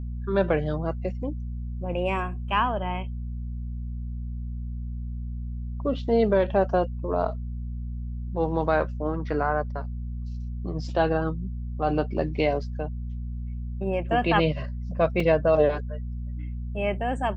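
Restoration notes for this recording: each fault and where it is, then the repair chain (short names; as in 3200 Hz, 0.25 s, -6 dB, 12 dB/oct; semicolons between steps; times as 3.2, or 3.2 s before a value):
hum 60 Hz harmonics 4 -32 dBFS
15.2 gap 3.2 ms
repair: de-hum 60 Hz, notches 4; interpolate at 15.2, 3.2 ms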